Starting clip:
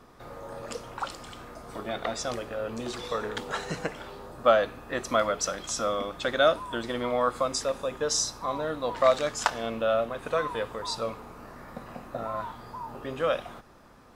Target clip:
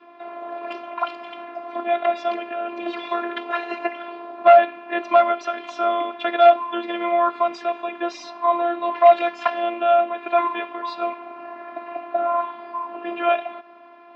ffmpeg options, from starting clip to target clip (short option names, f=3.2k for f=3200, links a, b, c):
-af "adynamicequalizer=threshold=0.01:dfrequency=740:dqfactor=1.3:tfrequency=740:tqfactor=1.3:attack=5:release=100:ratio=0.375:range=3:mode=cutabove:tftype=bell,afftfilt=real='hypot(re,im)*cos(PI*b)':imag='0':win_size=512:overlap=0.75,volume=20.5dB,asoftclip=hard,volume=-20.5dB,highpass=f=200:w=0.5412,highpass=f=200:w=1.3066,equalizer=f=690:t=q:w=4:g=8,equalizer=f=1k:t=q:w=4:g=4,equalizer=f=2.5k:t=q:w=4:g=8,lowpass=f=3.2k:w=0.5412,lowpass=f=3.2k:w=1.3066,volume=8.5dB"